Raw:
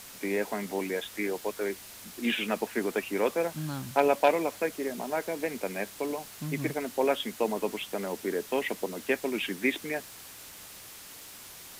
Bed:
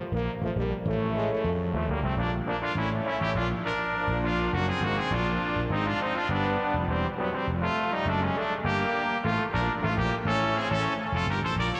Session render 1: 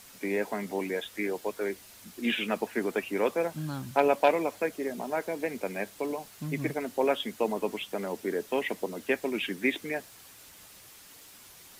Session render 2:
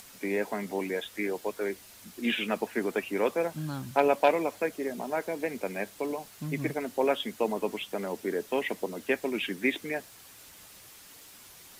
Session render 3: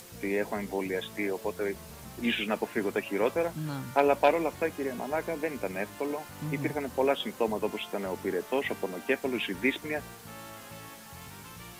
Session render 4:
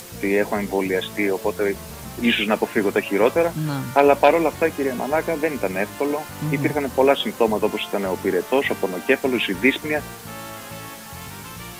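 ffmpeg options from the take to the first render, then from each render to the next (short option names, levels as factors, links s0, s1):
-af "afftdn=nr=6:nf=-47"
-af "acompressor=mode=upward:threshold=0.00398:ratio=2.5"
-filter_complex "[1:a]volume=0.1[s0];[0:a][s0]amix=inputs=2:normalize=0"
-af "volume=3.16,alimiter=limit=0.708:level=0:latency=1"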